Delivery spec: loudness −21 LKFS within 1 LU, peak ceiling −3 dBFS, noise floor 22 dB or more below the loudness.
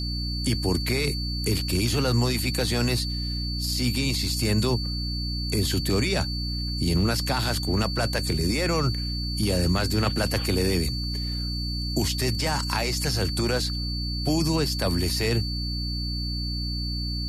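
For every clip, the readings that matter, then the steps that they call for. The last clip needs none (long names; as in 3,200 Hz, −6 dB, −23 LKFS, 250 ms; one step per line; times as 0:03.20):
mains hum 60 Hz; hum harmonics up to 300 Hz; level of the hum −27 dBFS; interfering tone 4,500 Hz; level of the tone −32 dBFS; integrated loudness −25.5 LKFS; sample peak −10.5 dBFS; target loudness −21.0 LKFS
→ mains-hum notches 60/120/180/240/300 Hz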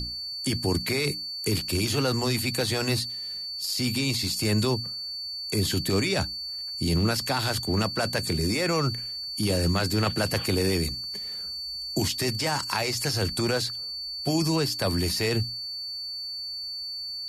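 mains hum none found; interfering tone 4,500 Hz; level of the tone −32 dBFS
→ notch filter 4,500 Hz, Q 30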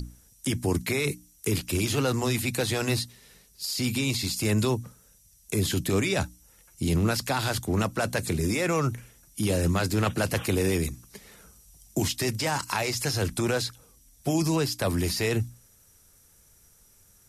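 interfering tone none found; integrated loudness −27.5 LKFS; sample peak −12.0 dBFS; target loudness −21.0 LKFS
→ level +6.5 dB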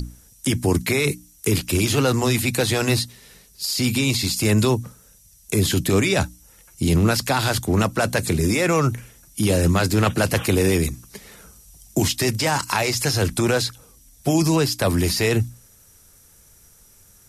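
integrated loudness −21.0 LKFS; sample peak −5.5 dBFS; background noise floor −52 dBFS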